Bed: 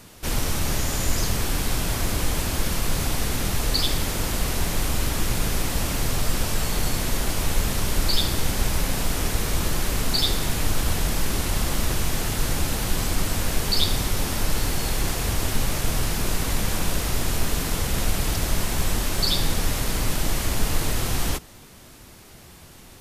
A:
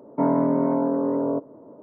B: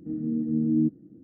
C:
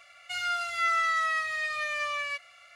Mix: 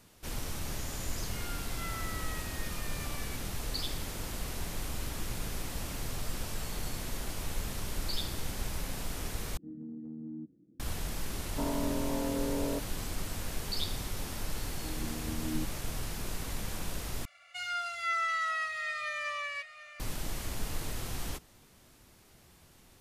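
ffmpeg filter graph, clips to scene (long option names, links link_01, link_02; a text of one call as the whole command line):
ffmpeg -i bed.wav -i cue0.wav -i cue1.wav -i cue2.wav -filter_complex "[3:a]asplit=2[link_01][link_02];[2:a]asplit=2[link_03][link_04];[0:a]volume=-13dB[link_05];[link_03]acompressor=threshold=-26dB:ratio=6:attack=3.2:release=140:knee=1:detection=peak[link_06];[1:a]alimiter=limit=-17dB:level=0:latency=1:release=71[link_07];[link_04]equalizer=frequency=220:width_type=o:width=1.3:gain=-7.5[link_08];[link_02]aecho=1:1:738:0.2[link_09];[link_05]asplit=3[link_10][link_11][link_12];[link_10]atrim=end=9.574[link_13];[link_06]atrim=end=1.23,asetpts=PTS-STARTPTS,volume=-13dB[link_14];[link_11]atrim=start=10.796:end=17.254[link_15];[link_09]atrim=end=2.75,asetpts=PTS-STARTPTS,volume=-5dB[link_16];[link_12]atrim=start=19.996[link_17];[link_01]atrim=end=2.75,asetpts=PTS-STARTPTS,volume=-17dB,afade=type=in:duration=0.004:curve=hsin,afade=type=out:start_time=2.746:duration=0.004:curve=hsin,adelay=1000[link_18];[link_07]atrim=end=1.82,asetpts=PTS-STARTPTS,volume=-9dB,afade=type=in:duration=0.004:curve=hsin,afade=type=out:start_time=1.816:duration=0.004:curve=hsin,adelay=11400[link_19];[link_08]atrim=end=1.23,asetpts=PTS-STARTPTS,volume=-8.5dB,afade=type=in:duration=0.004:curve=hsin,afade=type=out:start_time=1.226:duration=0.004:curve=hsin,adelay=650916S[link_20];[link_13][link_14]acrossfade=duration=0.004:curve1=hsin:curve2=hsin[link_21];[link_21][link_15]acrossfade=duration=0.004:curve1=hsin:curve2=hsin[link_22];[link_22][link_16]acrossfade=duration=0.004:curve1=hsin:curve2=hsin[link_23];[link_23][link_17]acrossfade=duration=0.004:curve1=hsin:curve2=hsin[link_24];[link_24][link_18][link_19][link_20]amix=inputs=4:normalize=0" out.wav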